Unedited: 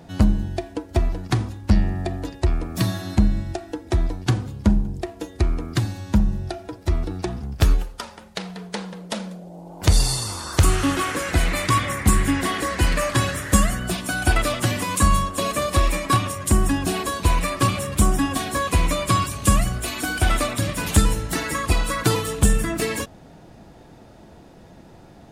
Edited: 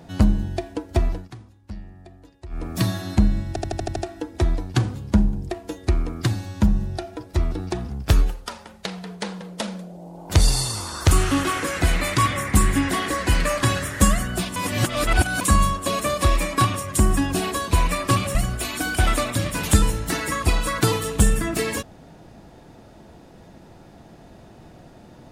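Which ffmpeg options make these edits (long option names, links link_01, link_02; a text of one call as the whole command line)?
ffmpeg -i in.wav -filter_complex "[0:a]asplit=12[link_01][link_02][link_03][link_04][link_05][link_06][link_07][link_08][link_09][link_10][link_11][link_12];[link_01]atrim=end=1.31,asetpts=PTS-STARTPTS,afade=type=out:start_time=1.13:duration=0.18:silence=0.112202[link_13];[link_02]atrim=start=1.31:end=2.49,asetpts=PTS-STARTPTS,volume=-19dB[link_14];[link_03]atrim=start=2.49:end=3.562,asetpts=PTS-STARTPTS,afade=type=in:duration=0.18:silence=0.112202[link_15];[link_04]atrim=start=3.478:end=3.562[link_16];[link_05]atrim=start=3.478:end=3.562[link_17];[link_06]atrim=start=3.478:end=3.562[link_18];[link_07]atrim=start=3.478:end=3.562[link_19];[link_08]atrim=start=3.478:end=3.562[link_20];[link_09]atrim=start=3.478:end=14.082[link_21];[link_10]atrim=start=14.078:end=14.932,asetpts=PTS-STARTPTS,areverse[link_22];[link_11]atrim=start=14.928:end=17.872[link_23];[link_12]atrim=start=19.578[link_24];[link_13][link_14][link_15]concat=n=3:v=0:a=1[link_25];[link_25][link_16]acrossfade=duration=0.004:curve1=hsin:curve2=hsin[link_26];[link_26][link_17]acrossfade=duration=0.004:curve1=hsin:curve2=hsin[link_27];[link_27][link_18]acrossfade=duration=0.004:curve1=hsin:curve2=hsin[link_28];[link_28][link_19]acrossfade=duration=0.004:curve1=hsin:curve2=hsin[link_29];[link_29][link_20]acrossfade=duration=0.004:curve1=hsin:curve2=hsin[link_30];[link_30][link_21]acrossfade=duration=0.004:curve1=hsin:curve2=hsin[link_31];[link_31][link_22]acrossfade=duration=0.004:curve1=hsin:curve2=hsin[link_32];[link_32][link_23]acrossfade=duration=0.004:curve1=hsin:curve2=hsin[link_33];[link_33][link_24]acrossfade=duration=0.004:curve1=hsin:curve2=hsin" out.wav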